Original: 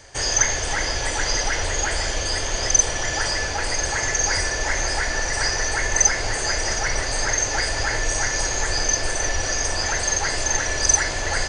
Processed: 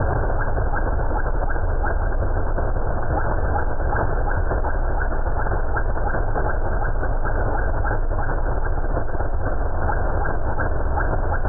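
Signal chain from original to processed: Chebyshev low-pass 1.6 kHz, order 10; bass shelf 190 Hz +8 dB; level flattener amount 100%; trim -7 dB

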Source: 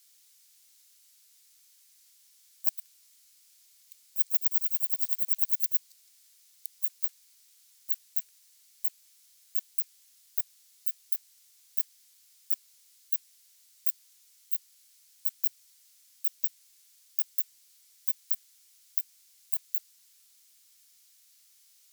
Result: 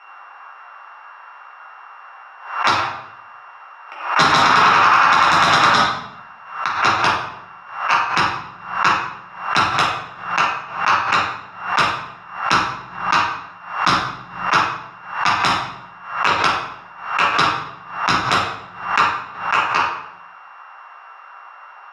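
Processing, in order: sorted samples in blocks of 16 samples; in parallel at +1 dB: compression, threshold -38 dBFS, peak gain reduction 18.5 dB; on the sum: Butterworth band-pass 1.1 kHz, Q 1.7; sine folder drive 11 dB, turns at -19 dBFS; reverberation RT60 0.75 s, pre-delay 3 ms, DRR -6.5 dB; loudness maximiser +10 dB; swell ahead of each attack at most 99 dB/s; trim -2 dB

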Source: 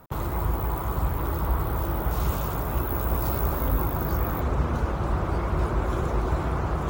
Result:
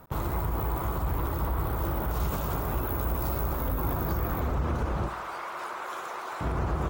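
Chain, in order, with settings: 5.08–6.41 s: high-pass 960 Hz 12 dB/octave; peak limiter -20.5 dBFS, peak gain reduction 7.5 dB; feedback delay 70 ms, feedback 53%, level -13.5 dB

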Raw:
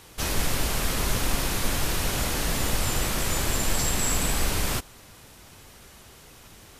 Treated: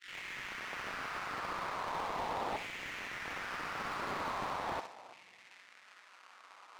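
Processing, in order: tape start-up on the opening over 0.88 s; FFT band-reject 270–1100 Hz; sample-rate reducer 1.6 kHz, jitter 20%; ring modulator 94 Hz; LFO high-pass saw down 0.39 Hz 760–2200 Hz; integer overflow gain 24.5 dB; band-pass 120–6900 Hz; flutter echo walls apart 11 m, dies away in 0.3 s; on a send at -21 dB: reverberation RT60 2.5 s, pre-delay 46 ms; on the sum: slew-rate limiter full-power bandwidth 20 Hz; trim +1 dB

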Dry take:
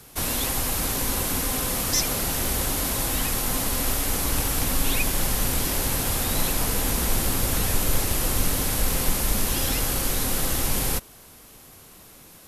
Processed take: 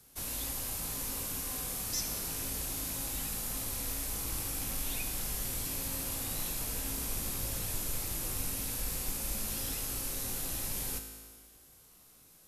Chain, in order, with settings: rattle on loud lows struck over -28 dBFS, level -25 dBFS; tone controls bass +2 dB, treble +6 dB; feedback comb 54 Hz, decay 1.6 s, harmonics all, mix 80%; trim -5 dB

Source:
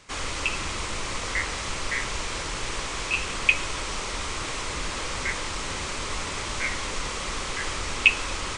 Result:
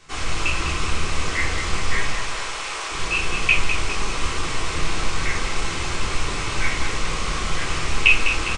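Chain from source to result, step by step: rattle on loud lows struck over -34 dBFS, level -24 dBFS; 2.07–2.91 s: Chebyshev high-pass 610 Hz, order 2; feedback delay 203 ms, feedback 48%, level -8 dB; reverberation RT60 0.50 s, pre-delay 3 ms, DRR -4 dB; loudspeaker Doppler distortion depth 0.12 ms; trim -2 dB

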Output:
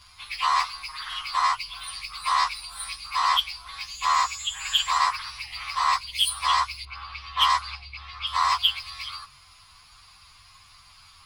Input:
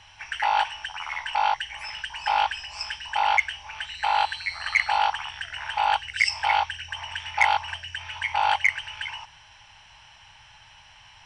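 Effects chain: frequency axis rescaled in octaves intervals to 119%; 6.85–8.27 s: level-controlled noise filter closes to 2.1 kHz, open at -20.5 dBFS; trim +3.5 dB

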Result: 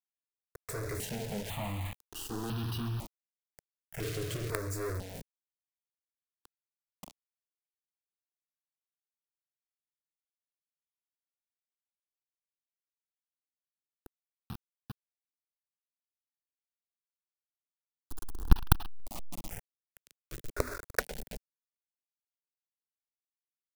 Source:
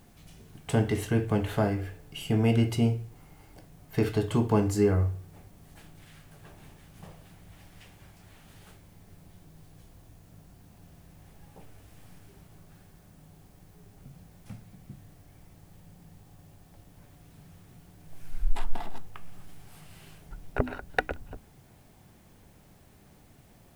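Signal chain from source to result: 18.79–19.49 s: harmonic-percussive split percussive -7 dB; companded quantiser 2-bit; stepped phaser 2 Hz 230–2100 Hz; trim -7.5 dB

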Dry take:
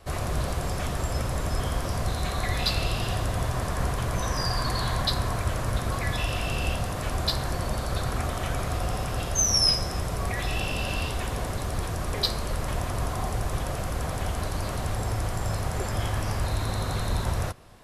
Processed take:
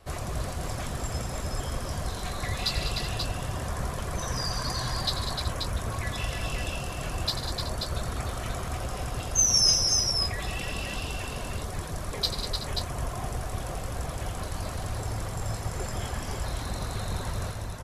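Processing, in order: reverb removal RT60 1.5 s; dynamic bell 6.9 kHz, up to +6 dB, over -48 dBFS, Q 1.4; on a send: multi-tap echo 91/149/195/302/376/534 ms -11/-12.5/-9/-6/-13.5/-5.5 dB; on the sum: trim -3.5 dB

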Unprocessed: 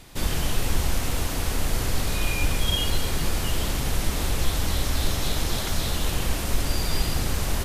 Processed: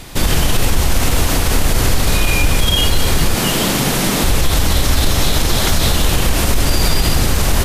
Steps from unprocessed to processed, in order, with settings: 3.34–4.24 s: resonant low shelf 110 Hz -13.5 dB, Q 1.5; loudness maximiser +16.5 dB; trim -3 dB

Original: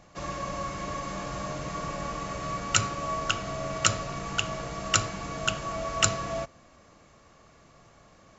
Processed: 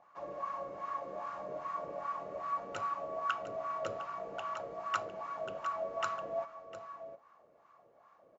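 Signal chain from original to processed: delay 705 ms -10 dB; wah-wah 2.5 Hz 480–1200 Hz, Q 3

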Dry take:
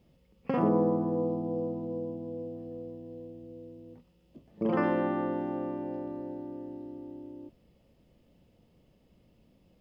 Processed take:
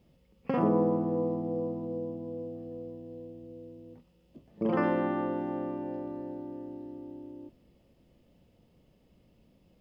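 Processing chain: spring tank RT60 3.6 s, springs 46 ms, chirp 70 ms, DRR 18 dB

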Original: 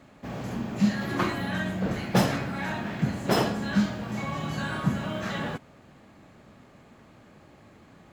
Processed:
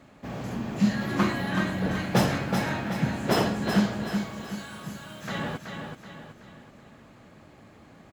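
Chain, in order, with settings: 4.04–5.28 s: pre-emphasis filter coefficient 0.8; feedback delay 377 ms, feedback 44%, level -6 dB

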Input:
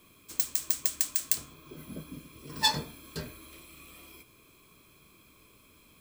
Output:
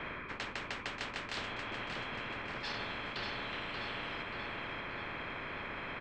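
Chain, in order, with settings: reverse; compression 6:1, threshold -39 dBFS, peak gain reduction 18.5 dB; reverse; frequency shift -37 Hz; four-pole ladder low-pass 1.8 kHz, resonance 80%; feedback delay 583 ms, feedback 46%, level -8 dB; spectrum-flattening compressor 10:1; trim +13 dB

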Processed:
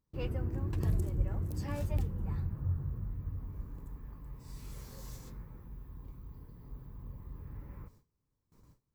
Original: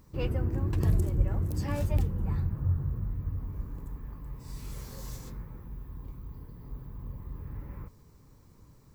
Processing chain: gate with hold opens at -45 dBFS; trim -5.5 dB

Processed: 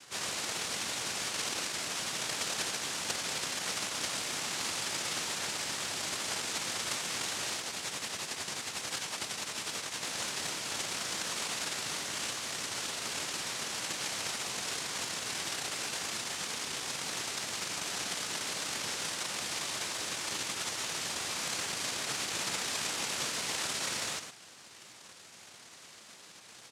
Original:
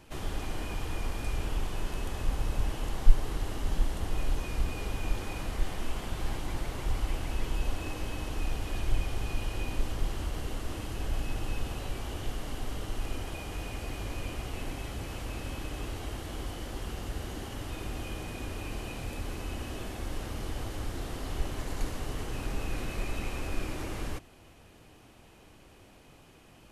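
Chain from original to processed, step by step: 7.56–10.05 s: tremolo triangle 11 Hz, depth 60%; speakerphone echo 110 ms, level -6 dB; noise-vocoded speech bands 1; trim +3.5 dB

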